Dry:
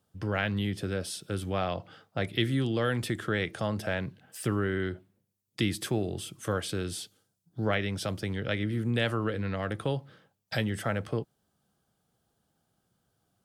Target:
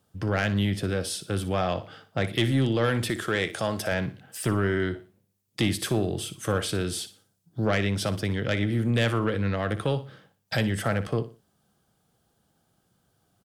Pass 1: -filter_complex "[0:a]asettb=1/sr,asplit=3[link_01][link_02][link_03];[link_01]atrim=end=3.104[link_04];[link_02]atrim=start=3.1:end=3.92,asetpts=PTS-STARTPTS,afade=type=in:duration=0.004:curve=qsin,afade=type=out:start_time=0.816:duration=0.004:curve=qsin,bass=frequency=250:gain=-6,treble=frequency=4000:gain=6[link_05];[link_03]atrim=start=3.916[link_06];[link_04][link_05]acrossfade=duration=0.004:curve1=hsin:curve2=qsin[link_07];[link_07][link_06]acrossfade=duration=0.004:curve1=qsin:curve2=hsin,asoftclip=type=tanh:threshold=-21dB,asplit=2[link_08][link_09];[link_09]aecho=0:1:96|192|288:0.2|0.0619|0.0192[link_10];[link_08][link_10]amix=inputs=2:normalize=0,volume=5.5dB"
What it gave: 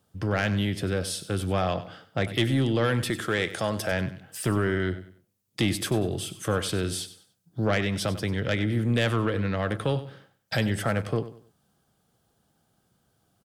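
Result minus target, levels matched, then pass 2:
echo 36 ms late
-filter_complex "[0:a]asettb=1/sr,asplit=3[link_01][link_02][link_03];[link_01]atrim=end=3.104[link_04];[link_02]atrim=start=3.1:end=3.92,asetpts=PTS-STARTPTS,afade=type=in:duration=0.004:curve=qsin,afade=type=out:start_time=0.816:duration=0.004:curve=qsin,bass=frequency=250:gain=-6,treble=frequency=4000:gain=6[link_05];[link_03]atrim=start=3.916[link_06];[link_04][link_05]acrossfade=duration=0.004:curve1=hsin:curve2=qsin[link_07];[link_07][link_06]acrossfade=duration=0.004:curve1=qsin:curve2=hsin,asoftclip=type=tanh:threshold=-21dB,asplit=2[link_08][link_09];[link_09]aecho=0:1:60|120|180:0.2|0.0619|0.0192[link_10];[link_08][link_10]amix=inputs=2:normalize=0,volume=5.5dB"

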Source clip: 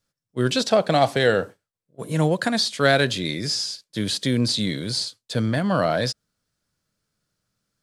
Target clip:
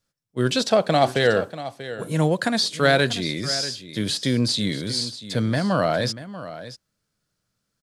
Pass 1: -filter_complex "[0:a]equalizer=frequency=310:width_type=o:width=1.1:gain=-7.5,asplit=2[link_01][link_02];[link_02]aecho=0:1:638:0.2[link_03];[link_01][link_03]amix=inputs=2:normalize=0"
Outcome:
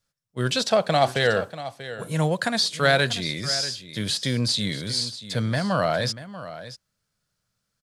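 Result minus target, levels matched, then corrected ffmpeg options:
250 Hz band −3.0 dB
-filter_complex "[0:a]asplit=2[link_01][link_02];[link_02]aecho=0:1:638:0.2[link_03];[link_01][link_03]amix=inputs=2:normalize=0"

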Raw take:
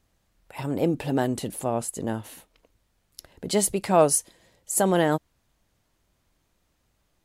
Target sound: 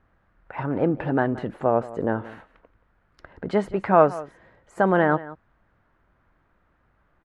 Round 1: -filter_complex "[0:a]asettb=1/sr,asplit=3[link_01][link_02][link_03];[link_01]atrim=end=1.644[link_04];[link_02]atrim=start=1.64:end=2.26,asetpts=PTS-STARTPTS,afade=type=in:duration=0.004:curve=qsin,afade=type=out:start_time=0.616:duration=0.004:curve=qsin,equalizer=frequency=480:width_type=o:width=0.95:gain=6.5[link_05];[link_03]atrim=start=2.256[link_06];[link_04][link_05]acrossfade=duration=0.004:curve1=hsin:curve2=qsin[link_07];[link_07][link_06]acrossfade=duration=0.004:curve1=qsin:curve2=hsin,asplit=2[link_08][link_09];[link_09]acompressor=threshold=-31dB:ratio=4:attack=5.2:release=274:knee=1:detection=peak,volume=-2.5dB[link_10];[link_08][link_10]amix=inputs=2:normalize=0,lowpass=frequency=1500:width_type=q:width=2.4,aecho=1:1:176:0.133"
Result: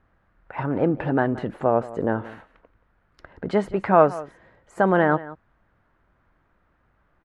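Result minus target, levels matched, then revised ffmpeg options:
downward compressor: peak gain reduction −6 dB
-filter_complex "[0:a]asettb=1/sr,asplit=3[link_01][link_02][link_03];[link_01]atrim=end=1.644[link_04];[link_02]atrim=start=1.64:end=2.26,asetpts=PTS-STARTPTS,afade=type=in:duration=0.004:curve=qsin,afade=type=out:start_time=0.616:duration=0.004:curve=qsin,equalizer=frequency=480:width_type=o:width=0.95:gain=6.5[link_05];[link_03]atrim=start=2.256[link_06];[link_04][link_05]acrossfade=duration=0.004:curve1=hsin:curve2=qsin[link_07];[link_07][link_06]acrossfade=duration=0.004:curve1=qsin:curve2=hsin,asplit=2[link_08][link_09];[link_09]acompressor=threshold=-39dB:ratio=4:attack=5.2:release=274:knee=1:detection=peak,volume=-2.5dB[link_10];[link_08][link_10]amix=inputs=2:normalize=0,lowpass=frequency=1500:width_type=q:width=2.4,aecho=1:1:176:0.133"

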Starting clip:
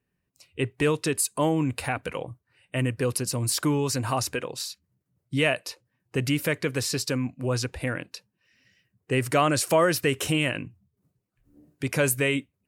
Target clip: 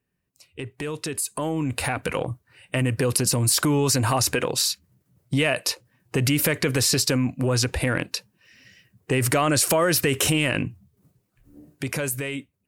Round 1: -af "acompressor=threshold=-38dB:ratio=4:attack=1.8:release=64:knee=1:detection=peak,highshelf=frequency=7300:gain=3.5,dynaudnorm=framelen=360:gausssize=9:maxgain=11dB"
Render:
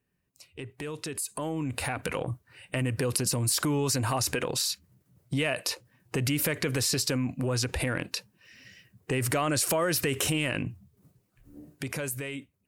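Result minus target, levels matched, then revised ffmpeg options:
downward compressor: peak gain reduction +6.5 dB
-af "acompressor=threshold=-29.5dB:ratio=4:attack=1.8:release=64:knee=1:detection=peak,highshelf=frequency=7300:gain=3.5,dynaudnorm=framelen=360:gausssize=9:maxgain=11dB"

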